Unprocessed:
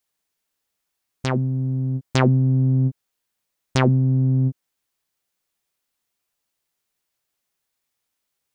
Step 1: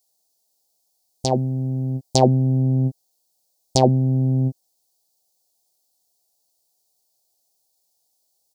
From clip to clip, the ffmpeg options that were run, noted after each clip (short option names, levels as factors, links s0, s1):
-af "firequalizer=gain_entry='entry(190,0);entry(760,12);entry(1300,-24);entry(4400,11)':delay=0.05:min_phase=1,volume=0.891"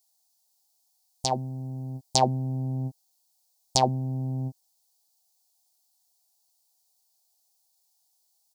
-af "lowshelf=f=680:t=q:w=1.5:g=-9.5,volume=0.891"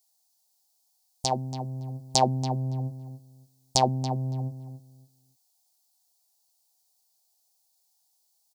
-filter_complex "[0:a]asplit=2[s0][s1];[s1]adelay=281,lowpass=f=2900:p=1,volume=0.299,asplit=2[s2][s3];[s3]adelay=281,lowpass=f=2900:p=1,volume=0.21,asplit=2[s4][s5];[s5]adelay=281,lowpass=f=2900:p=1,volume=0.21[s6];[s0][s2][s4][s6]amix=inputs=4:normalize=0"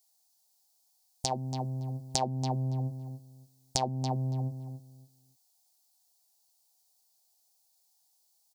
-af "acompressor=threshold=0.0398:ratio=3"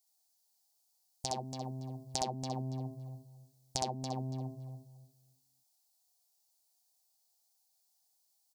-af "aecho=1:1:64.14|282.8:0.708|0.251,volume=0.473"